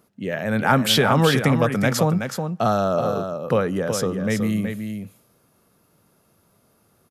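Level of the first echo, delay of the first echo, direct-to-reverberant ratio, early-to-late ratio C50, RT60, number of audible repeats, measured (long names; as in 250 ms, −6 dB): −7.0 dB, 373 ms, no reverb audible, no reverb audible, no reverb audible, 1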